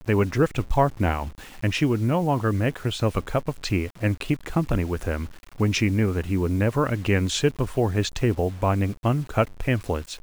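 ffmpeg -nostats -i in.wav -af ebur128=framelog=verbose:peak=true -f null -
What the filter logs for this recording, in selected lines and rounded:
Integrated loudness:
  I:         -24.4 LUFS
  Threshold: -34.5 LUFS
Loudness range:
  LRA:         2.2 LU
  Threshold: -44.6 LUFS
  LRA low:   -25.9 LUFS
  LRA high:  -23.7 LUFS
True peak:
  Peak:       -7.4 dBFS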